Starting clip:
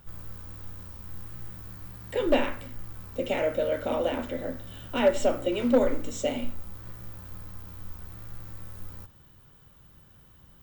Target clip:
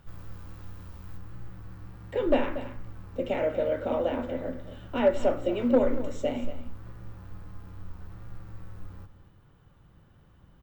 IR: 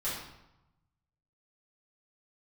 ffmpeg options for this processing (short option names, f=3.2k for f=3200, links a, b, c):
-af "asetnsamples=n=441:p=0,asendcmd='1.17 lowpass f 1600',lowpass=f=3.8k:p=1,aecho=1:1:234:0.224"